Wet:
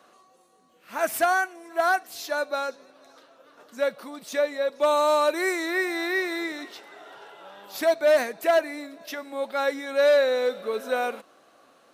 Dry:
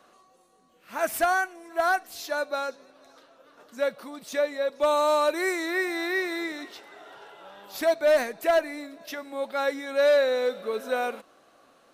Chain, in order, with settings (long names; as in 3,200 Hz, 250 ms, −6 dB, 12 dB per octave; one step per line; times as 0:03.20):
high-pass filter 120 Hz 6 dB per octave
level +1.5 dB